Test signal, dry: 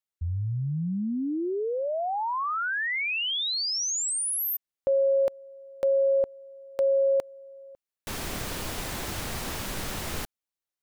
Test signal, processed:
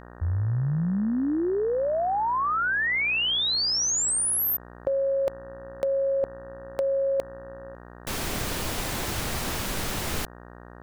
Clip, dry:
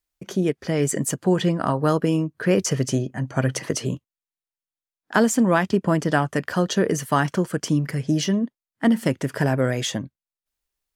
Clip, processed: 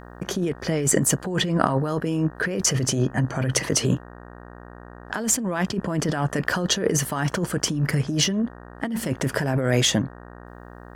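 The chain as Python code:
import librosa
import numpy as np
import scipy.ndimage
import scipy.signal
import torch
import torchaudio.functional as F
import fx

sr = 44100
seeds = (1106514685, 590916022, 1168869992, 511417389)

y = fx.dmg_buzz(x, sr, base_hz=60.0, harmonics=31, level_db=-49.0, tilt_db=-3, odd_only=False)
y = fx.over_compress(y, sr, threshold_db=-25.0, ratio=-1.0)
y = y * librosa.db_to_amplitude(2.5)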